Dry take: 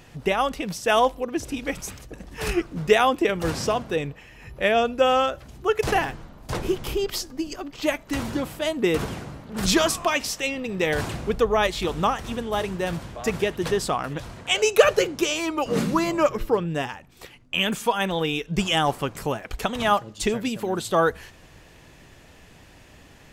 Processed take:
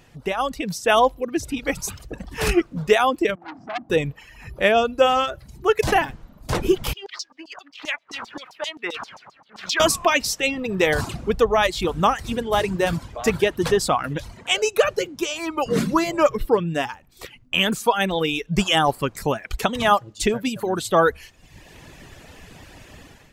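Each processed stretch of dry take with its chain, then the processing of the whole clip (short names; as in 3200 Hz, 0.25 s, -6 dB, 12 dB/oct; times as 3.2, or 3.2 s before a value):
3.35–3.9 double band-pass 480 Hz, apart 1.3 oct + low shelf 470 Hz +7 dB + core saturation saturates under 2100 Hz
6.93–9.8 median filter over 5 samples + LFO band-pass saw down 7.6 Hz 830–6400 Hz
whole clip: reverb removal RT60 0.83 s; AGC; gain -3.5 dB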